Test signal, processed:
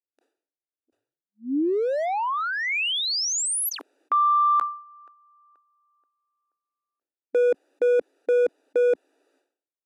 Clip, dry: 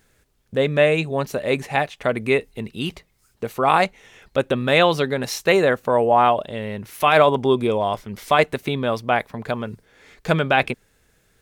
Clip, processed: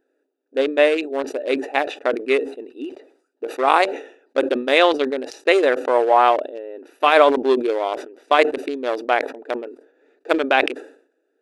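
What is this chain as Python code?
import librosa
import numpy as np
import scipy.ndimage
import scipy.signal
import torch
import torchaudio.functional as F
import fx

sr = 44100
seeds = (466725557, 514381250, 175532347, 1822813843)

y = fx.wiener(x, sr, points=41)
y = fx.brickwall_bandpass(y, sr, low_hz=260.0, high_hz=12000.0)
y = fx.sustainer(y, sr, db_per_s=110.0)
y = y * librosa.db_to_amplitude(2.0)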